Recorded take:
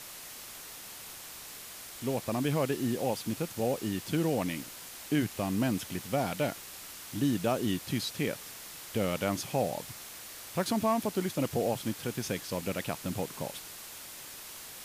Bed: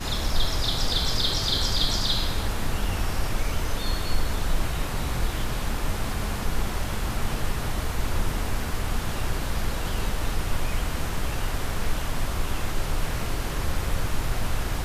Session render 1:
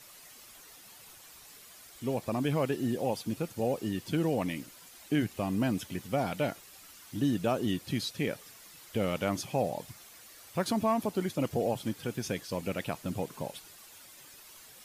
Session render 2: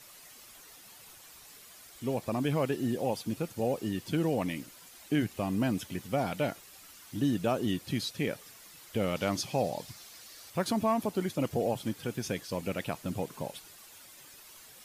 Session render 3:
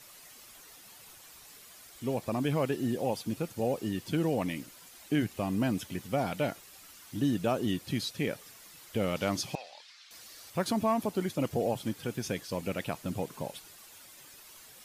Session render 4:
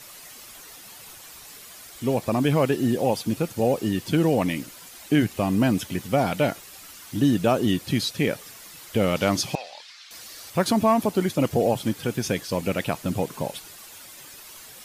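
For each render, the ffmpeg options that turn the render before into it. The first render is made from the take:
-af "afftdn=nr=10:nf=-46"
-filter_complex "[0:a]asettb=1/sr,asplit=3[s0][s1][s2];[s0]atrim=end=9.164[s3];[s1]atrim=start=9.16:end=10.5,asetpts=PTS-STARTPTS,afade=t=in:d=0.004:c=qsin,afade=t=out:st=1.336:d=0.004:c=qsin,equalizer=f=4700:w=1.4:g=6.5[s4];[s2]atrim=start=10.496[s5];[s3][s4]acrossfade=d=0.004:c1=hsin:c2=qsin[s6];[s6][s5]acrossfade=d=0.004:c1=qsin:c2=hsin"
-filter_complex "[0:a]asettb=1/sr,asplit=3[s0][s1][s2];[s0]atrim=end=9.554[s3];[s1]atrim=start=9.55:end=10.11,asetpts=PTS-STARTPTS,afade=t=in:d=0.004:c=qsin,afade=t=out:st=0.556:d=0.004:c=qsin,asuperpass=centerf=2600:order=4:qfactor=0.76[s4];[s2]atrim=start=10.106[s5];[s3][s4]acrossfade=d=0.004:c1=hsin:c2=qsin[s6];[s6][s5]acrossfade=d=0.004:c1=qsin:c2=hsin"
-af "volume=2.66"

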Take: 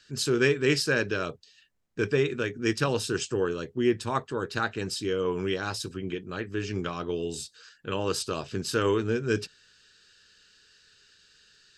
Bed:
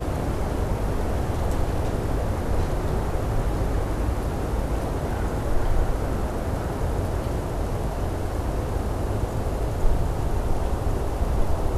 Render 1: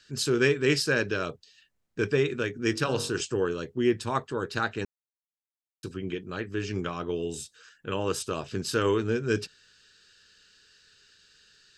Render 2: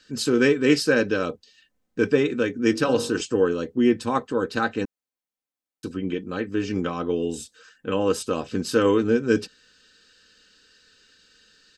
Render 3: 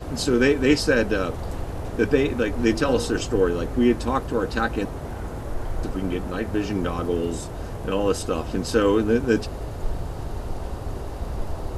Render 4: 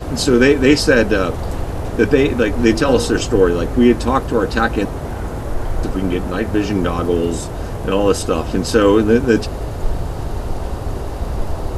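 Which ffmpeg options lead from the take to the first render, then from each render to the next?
-filter_complex "[0:a]asettb=1/sr,asplit=3[s0][s1][s2];[s0]atrim=end=2.694[s3];[s1]atrim=start=2.69:end=3.21,asetpts=PTS-STARTPTS,afade=t=in:d=0.004:c=qsin,afade=t=out:st=0.516:d=0.004:c=qsin,bandreject=f=47.17:t=h:w=4,bandreject=f=94.34:t=h:w=4,bandreject=f=141.51:t=h:w=4,bandreject=f=188.68:t=h:w=4,bandreject=f=235.85:t=h:w=4,bandreject=f=283.02:t=h:w=4,bandreject=f=330.19:t=h:w=4,bandreject=f=377.36:t=h:w=4,bandreject=f=424.53:t=h:w=4,bandreject=f=471.7:t=h:w=4,bandreject=f=518.87:t=h:w=4,bandreject=f=566.04:t=h:w=4,bandreject=f=613.21:t=h:w=4,bandreject=f=660.38:t=h:w=4,bandreject=f=707.55:t=h:w=4,bandreject=f=754.72:t=h:w=4,bandreject=f=801.89:t=h:w=4,bandreject=f=849.06:t=h:w=4,bandreject=f=896.23:t=h:w=4,bandreject=f=943.4:t=h:w=4,bandreject=f=990.57:t=h:w=4,bandreject=f=1037.74:t=h:w=4,bandreject=f=1084.91:t=h:w=4,bandreject=f=1132.08:t=h:w=4,bandreject=f=1179.25:t=h:w=4,bandreject=f=1226.42:t=h:w=4,bandreject=f=1273.59:t=h:w=4,bandreject=f=1320.76:t=h:w=4,bandreject=f=1367.93:t=h:w=4,bandreject=f=1415.1:t=h:w=4,bandreject=f=1462.27:t=h:w=4,bandreject=f=1509.44:t=h:w=4,bandreject=f=1556.61:t=h:w=4[s4];[s2]atrim=start=3.206[s5];[s3][s4]acrossfade=d=0.004:c1=hsin:c2=qsin[s6];[s6][s5]acrossfade=d=0.004:c1=qsin:c2=hsin,asettb=1/sr,asplit=3[s7][s8][s9];[s7]atrim=end=6.804[s10];[s8]atrim=start=6.8:end=8.47,asetpts=PTS-STARTPTS,afade=t=in:d=0.004:c=qsin,afade=t=out:st=1.666:d=0.004:c=qsin,equalizer=f=4500:t=o:w=0.42:g=-8.5[s11];[s9]atrim=start=8.466[s12];[s10][s11]acrossfade=d=0.004:c1=hsin:c2=qsin[s13];[s13][s12]acrossfade=d=0.004:c1=qsin:c2=hsin,asplit=3[s14][s15][s16];[s14]atrim=end=4.85,asetpts=PTS-STARTPTS,afade=t=out:st=4.846:d=0.004:c=hsin[s17];[s15]atrim=start=4.85:end=5.83,asetpts=PTS-STARTPTS,volume=0[s18];[s16]atrim=start=5.83,asetpts=PTS-STARTPTS,afade=t=in:d=0.004:c=hsin[s19];[s17][s18][s19]concat=n=3:v=0:a=1"
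-af "equalizer=f=330:w=0.41:g=7,aecho=1:1:3.9:0.53"
-filter_complex "[1:a]volume=0.501[s0];[0:a][s0]amix=inputs=2:normalize=0"
-af "volume=2.37,alimiter=limit=0.891:level=0:latency=1"

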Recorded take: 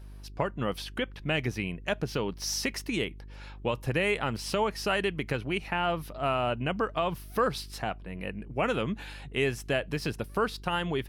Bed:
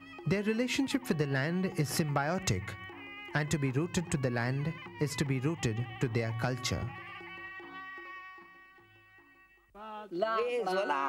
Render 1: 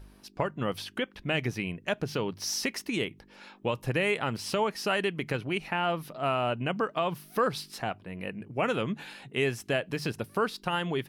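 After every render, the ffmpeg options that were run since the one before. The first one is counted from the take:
-af "bandreject=f=50:t=h:w=4,bandreject=f=100:t=h:w=4,bandreject=f=150:t=h:w=4"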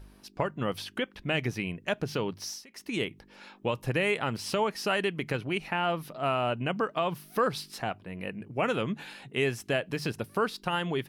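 -filter_complex "[0:a]asplit=3[s0][s1][s2];[s0]atrim=end=2.65,asetpts=PTS-STARTPTS,afade=t=out:st=2.33:d=0.32:silence=0.0630957[s3];[s1]atrim=start=2.65:end=2.68,asetpts=PTS-STARTPTS,volume=0.0631[s4];[s2]atrim=start=2.68,asetpts=PTS-STARTPTS,afade=t=in:d=0.32:silence=0.0630957[s5];[s3][s4][s5]concat=n=3:v=0:a=1"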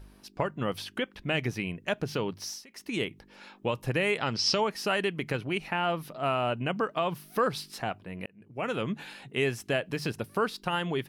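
-filter_complex "[0:a]asettb=1/sr,asplit=3[s0][s1][s2];[s0]atrim=end=4.184[s3];[s1]atrim=start=4.18:end=4.61,asetpts=PTS-STARTPTS,afade=t=in:d=0.004:c=qsin,afade=t=out:st=0.426:d=0.004:c=qsin,lowpass=f=5300:t=q:w=5.2[s4];[s2]atrim=start=4.606[s5];[s3][s4]acrossfade=d=0.004:c1=hsin:c2=qsin[s6];[s6][s5]acrossfade=d=0.004:c1=qsin:c2=hsin,asplit=2[s7][s8];[s7]atrim=end=8.26,asetpts=PTS-STARTPTS,afade=t=out:st=8.256:d=0.004:c=hsin[s9];[s8]atrim=start=8.26,asetpts=PTS-STARTPTS,afade=t=in:d=0.63[s10];[s9][s10]concat=n=2:v=0:a=1"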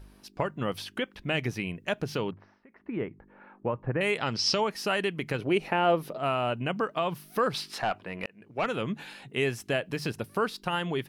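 -filter_complex "[0:a]asettb=1/sr,asplit=3[s0][s1][s2];[s0]atrim=end=2.314[s3];[s1]atrim=start=2.31:end=4.01,asetpts=PTS-STARTPTS,afade=t=in:d=0.004:c=qsin,afade=t=out:st=1.696:d=0.004:c=qsin,lowpass=f=1700:w=0.5412,lowpass=f=1700:w=1.3066[s4];[s2]atrim=start=4.006[s5];[s3][s4]acrossfade=d=0.004:c1=hsin:c2=qsin[s6];[s6][s5]acrossfade=d=0.004:c1=qsin:c2=hsin,asettb=1/sr,asplit=3[s7][s8][s9];[s7]atrim=end=5.394[s10];[s8]atrim=start=5.39:end=6.18,asetpts=PTS-STARTPTS,afade=t=in:d=0.004:c=qsin,afade=t=out:st=0.786:d=0.004:c=qsin,equalizer=f=460:t=o:w=1.4:g=10[s11];[s9]atrim=start=6.176[s12];[s10][s11]acrossfade=d=0.004:c1=hsin:c2=qsin[s13];[s13][s12]acrossfade=d=0.004:c1=qsin:c2=hsin,asettb=1/sr,asplit=3[s14][s15][s16];[s14]atrim=end=7.544[s17];[s15]atrim=start=7.54:end=8.66,asetpts=PTS-STARTPTS,afade=t=in:d=0.004:c=qsin,afade=t=out:st=1.116:d=0.004:c=qsin,asplit=2[s18][s19];[s19]highpass=f=720:p=1,volume=5.62,asoftclip=type=tanh:threshold=0.141[s20];[s18][s20]amix=inputs=2:normalize=0,lowpass=f=2900:p=1,volume=0.501[s21];[s16]atrim=start=8.656[s22];[s17][s21]acrossfade=d=0.004:c1=hsin:c2=qsin[s23];[s23][s22]acrossfade=d=0.004:c1=qsin:c2=hsin"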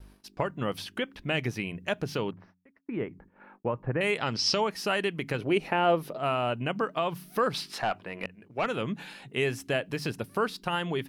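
-af "agate=range=0.0126:threshold=0.002:ratio=16:detection=peak,bandreject=f=90.96:t=h:w=4,bandreject=f=181.92:t=h:w=4,bandreject=f=272.88:t=h:w=4"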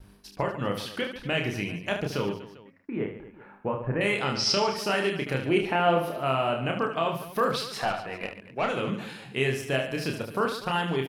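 -af "aecho=1:1:30|75|142.5|243.8|395.6:0.631|0.398|0.251|0.158|0.1"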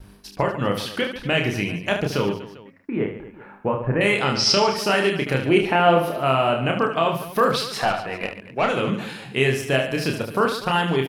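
-af "volume=2.11"

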